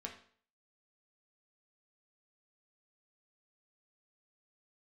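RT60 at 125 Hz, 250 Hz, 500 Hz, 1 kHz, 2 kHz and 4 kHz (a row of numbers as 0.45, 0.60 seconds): 0.50, 0.50, 0.50, 0.50, 0.50, 0.45 seconds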